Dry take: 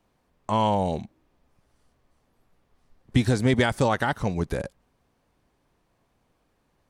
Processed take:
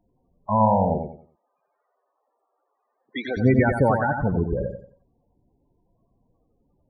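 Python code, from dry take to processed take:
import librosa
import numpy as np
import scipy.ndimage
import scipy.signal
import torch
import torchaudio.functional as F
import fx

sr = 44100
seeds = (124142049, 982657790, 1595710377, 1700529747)

y = fx.highpass(x, sr, hz=540.0, slope=12, at=(0.99, 3.37))
y = fx.spec_topn(y, sr, count=16)
y = fx.echo_feedback(y, sr, ms=91, feedback_pct=30, wet_db=-6.0)
y = y * librosa.db_to_amplitude(3.5)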